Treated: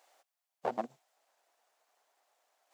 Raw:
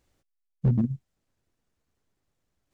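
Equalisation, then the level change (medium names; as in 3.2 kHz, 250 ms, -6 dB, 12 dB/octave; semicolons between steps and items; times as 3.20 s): ladder high-pass 620 Hz, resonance 55%; +17.0 dB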